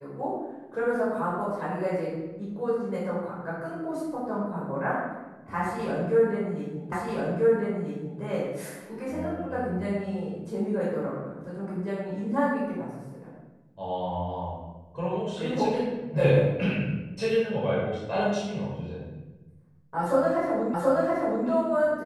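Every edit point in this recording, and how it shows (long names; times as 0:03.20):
0:06.92: the same again, the last 1.29 s
0:20.74: the same again, the last 0.73 s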